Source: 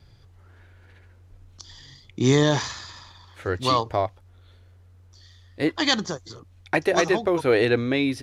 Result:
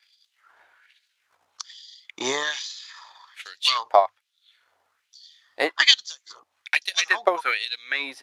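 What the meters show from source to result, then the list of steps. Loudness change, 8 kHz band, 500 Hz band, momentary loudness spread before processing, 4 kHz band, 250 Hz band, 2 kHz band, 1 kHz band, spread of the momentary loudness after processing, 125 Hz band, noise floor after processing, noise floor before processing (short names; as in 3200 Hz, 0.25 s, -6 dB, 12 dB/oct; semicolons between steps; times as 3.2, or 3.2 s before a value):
+0.5 dB, +2.0 dB, -5.0 dB, 14 LU, +6.5 dB, -17.0 dB, +4.0 dB, +2.0 dB, 22 LU, under -30 dB, -75 dBFS, -53 dBFS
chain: transient shaper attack +10 dB, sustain -4 dB; notches 50/100 Hz; LFO high-pass sine 1.2 Hz 760–4000 Hz; gain -2 dB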